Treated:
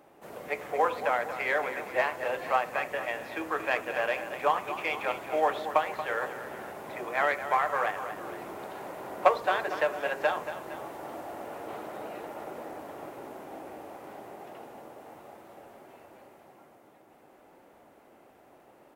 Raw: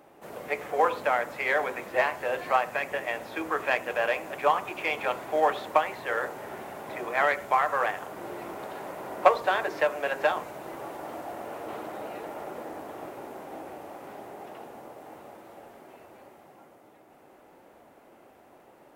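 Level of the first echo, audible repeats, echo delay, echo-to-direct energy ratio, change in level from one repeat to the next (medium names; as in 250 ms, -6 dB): -11.0 dB, 2, 231 ms, -10.0 dB, -5.0 dB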